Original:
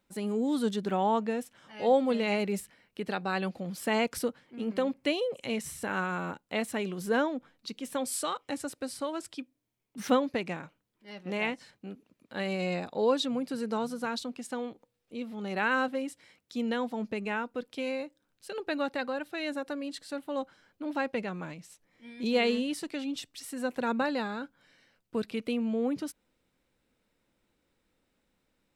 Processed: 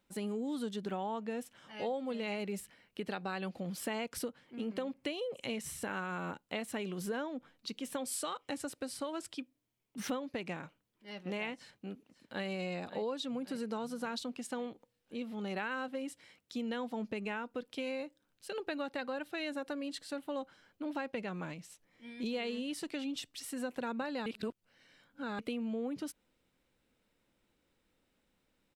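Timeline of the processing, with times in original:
0:11.54–0:12.47: delay throw 550 ms, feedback 60%, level −14.5 dB
0:24.26–0:25.39: reverse
whole clip: parametric band 3,000 Hz +2.5 dB 0.38 octaves; downward compressor 6 to 1, threshold −33 dBFS; level −1.5 dB

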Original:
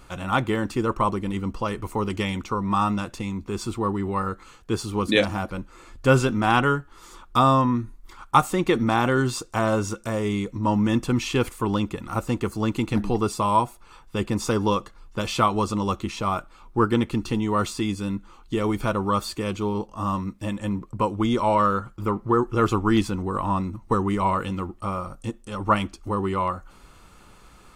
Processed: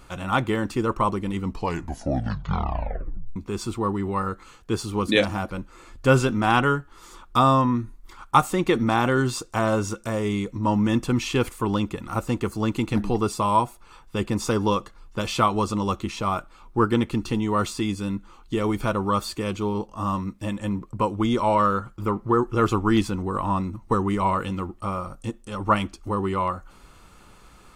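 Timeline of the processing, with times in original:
0:01.41: tape stop 1.95 s

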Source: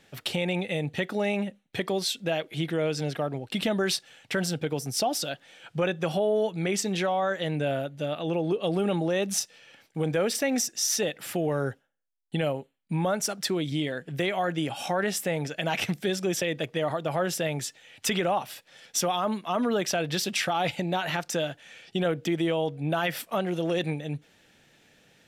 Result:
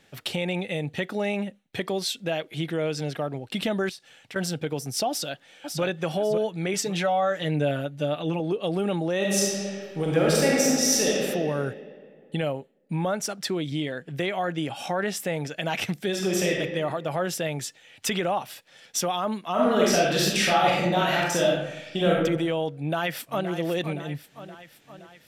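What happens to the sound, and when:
0:03.89–0:04.36: downward compressor 3 to 1, threshold −42 dBFS
0:05.09–0:05.82: delay throw 550 ms, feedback 30%, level −5 dB
0:06.73–0:08.40: comb filter 6.8 ms
0:09.16–0:11.14: thrown reverb, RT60 2.3 s, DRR −4.5 dB
0:12.42–0:15.20: high-shelf EQ 7,500 Hz −4.5 dB
0:16.09–0:16.55: thrown reverb, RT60 1.3 s, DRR −1.5 dB
0:19.52–0:22.22: thrown reverb, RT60 0.88 s, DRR −5 dB
0:22.76–0:23.50: delay throw 520 ms, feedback 60%, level −10.5 dB

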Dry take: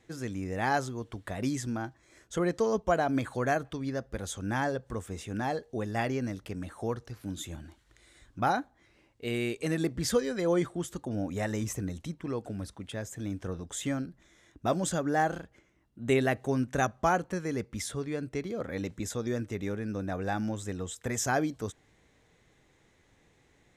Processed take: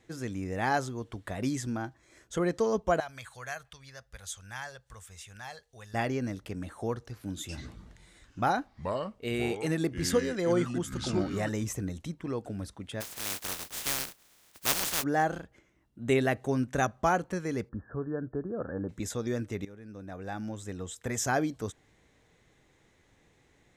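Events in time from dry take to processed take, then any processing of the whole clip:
0:03.00–0:05.94: guitar amp tone stack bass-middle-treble 10-0-10
0:07.40–0:11.49: delay with pitch and tempo change per echo 86 ms, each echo −5 semitones, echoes 2, each echo −6 dB
0:13.00–0:15.02: compressing power law on the bin magnitudes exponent 0.12
0:17.69–0:18.89: linear-phase brick-wall low-pass 1,800 Hz
0:19.65–0:21.25: fade in, from −17 dB

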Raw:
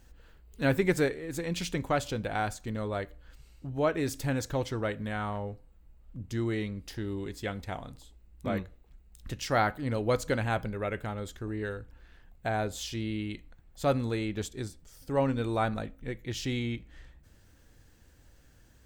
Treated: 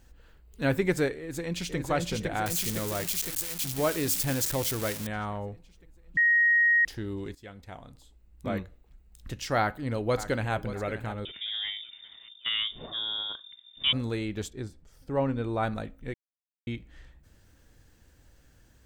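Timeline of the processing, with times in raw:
0:01.18–0:01.77: delay throw 510 ms, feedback 65%, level −2 dB
0:02.46–0:05.07: spike at every zero crossing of −21.5 dBFS
0:06.17–0:06.85: beep over 1,880 Hz −18.5 dBFS
0:07.35–0:08.48: fade in, from −14.5 dB
0:09.59–0:10.54: delay throw 580 ms, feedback 45%, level −13 dB
0:11.25–0:13.93: voice inversion scrambler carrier 3,600 Hz
0:14.50–0:15.63: high-shelf EQ 3,600 Hz −11.5 dB
0:16.14–0:16.67: silence

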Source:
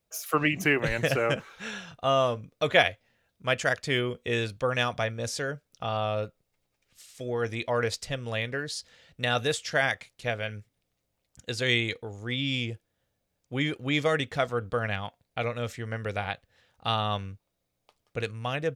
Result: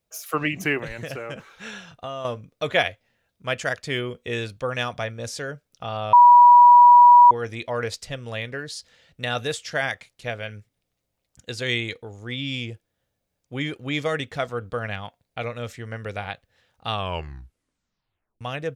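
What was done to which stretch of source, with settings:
0:00.83–0:02.25: downward compressor 5 to 1, threshold −29 dBFS
0:06.13–0:07.31: beep over 970 Hz −7 dBFS
0:16.88: tape stop 1.53 s

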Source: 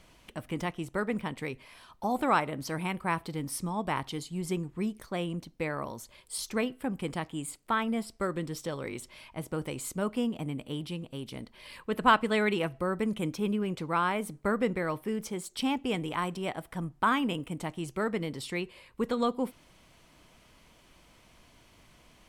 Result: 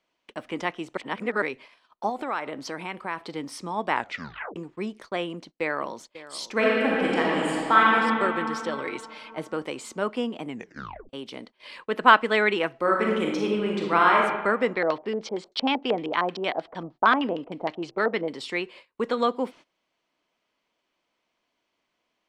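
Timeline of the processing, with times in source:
0:00.97–0:01.42: reverse
0:02.09–0:03.21: downward compressor 4 to 1, threshold −32 dBFS
0:03.92: tape stop 0.64 s
0:05.26–0:05.97: delay throw 540 ms, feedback 25%, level −15 dB
0:06.52–0:07.94: thrown reverb, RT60 3 s, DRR −6 dB
0:08.77–0:09.49: comb filter 6.6 ms, depth 51%
0:10.48: tape stop 0.61 s
0:12.80–0:14.18: thrown reverb, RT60 1.2 s, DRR −1.5 dB
0:14.75–0:18.28: auto-filter low-pass square 6.5 Hz 680–4,300 Hz
whole clip: three-way crossover with the lows and the highs turned down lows −22 dB, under 240 Hz, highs −23 dB, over 6,700 Hz; noise gate −51 dBFS, range −21 dB; dynamic equaliser 1,700 Hz, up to +4 dB, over −44 dBFS, Q 2; level +5.5 dB

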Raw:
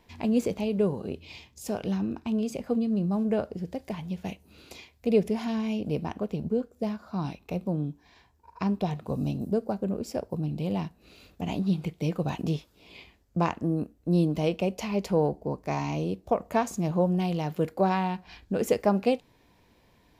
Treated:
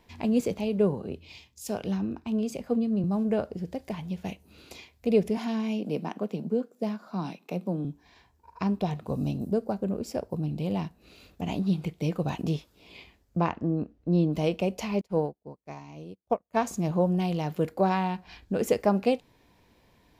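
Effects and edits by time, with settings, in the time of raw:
0:00.40–0:03.04: multiband upward and downward expander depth 40%
0:05.37–0:07.85: Butterworth high-pass 160 Hz
0:13.40–0:14.33: high-frequency loss of the air 140 metres
0:15.01–0:16.57: expander for the loud parts 2.5 to 1, over −45 dBFS

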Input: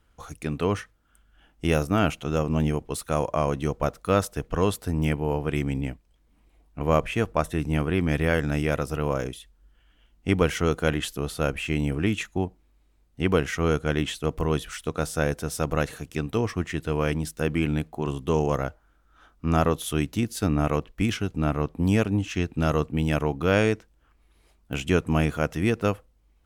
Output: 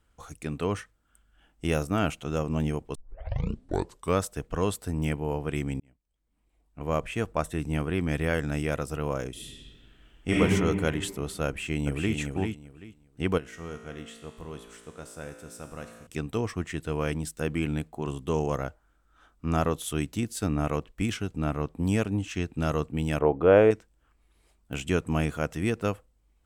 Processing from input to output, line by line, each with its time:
0:02.95: tape start 1.27 s
0:05.80–0:07.32: fade in
0:09.31–0:10.40: thrown reverb, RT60 2 s, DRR −7.5 dB
0:11.47–0:12.15: delay throw 390 ms, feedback 20%, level −4.5 dB
0:13.38–0:16.07: tuned comb filter 57 Hz, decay 1.7 s, mix 80%
0:23.19–0:23.71: drawn EQ curve 200 Hz 0 dB, 500 Hz +11 dB, 3,200 Hz −5 dB, 5,000 Hz −21 dB, 10,000 Hz −16 dB
whole clip: parametric band 8,000 Hz +7.5 dB 0.28 octaves; level −4 dB

